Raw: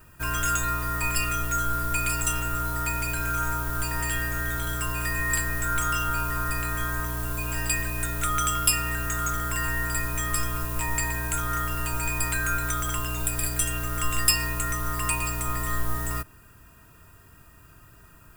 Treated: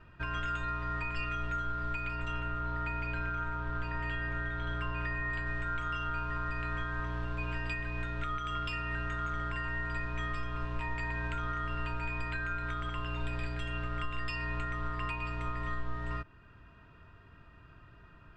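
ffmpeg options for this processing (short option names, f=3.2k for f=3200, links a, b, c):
-filter_complex "[0:a]asettb=1/sr,asplit=3[a][b][c];[a]atrim=end=2.064[d];[b]atrim=start=2.06:end=5.47,asetpts=PTS-STARTPTS,afade=t=in:d=0.004:c=qsin,afade=t=out:st=3.406:d=0.004:c=qsin,highshelf=f=6.2k:g=-11[e];[c]atrim=start=5.466[f];[d][e]acrossfade=d=0.004:c1=hsin:c2=qsin[g];[g][f]acrossfade=d=0.004:c1=qsin:c2=hsin,asettb=1/sr,asplit=3[h][i][j];[h]atrim=end=11.694[k];[i]atrim=start=11.69:end=15.31,asetpts=PTS-STARTPTS,afade=t=in:d=0.004:c=qsin,afade=t=out:st=3.616:d=0.004:c=qsin,bandreject=f=6.1k:w=12[l];[j]atrim=start=15.306[m];[k][l]acrossfade=d=0.004:c1=hsin:c2=qsin[n];[n][m]acrossfade=d=0.004:c1=qsin:c2=hsin,lowpass=f=3.6k:w=0.5412,lowpass=f=3.6k:w=1.3066,alimiter=limit=-22.5dB:level=0:latency=1:release=388,volume=-3dB"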